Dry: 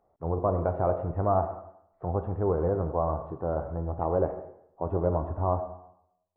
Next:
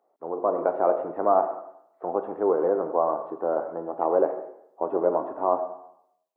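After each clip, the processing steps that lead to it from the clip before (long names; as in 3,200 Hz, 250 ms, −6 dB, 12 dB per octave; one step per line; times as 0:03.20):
automatic gain control gain up to 5 dB
high-pass filter 280 Hz 24 dB per octave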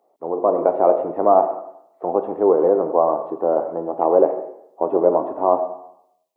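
parametric band 1,500 Hz −9.5 dB 0.73 octaves
level +7.5 dB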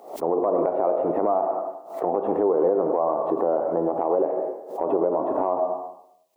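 downward compressor 6 to 1, threshold −22 dBFS, peak gain reduction 12.5 dB
brickwall limiter −18.5 dBFS, peak gain reduction 8 dB
background raised ahead of every attack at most 110 dB per second
level +6.5 dB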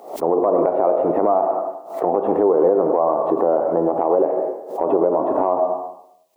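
floating-point word with a short mantissa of 8 bits
level +5 dB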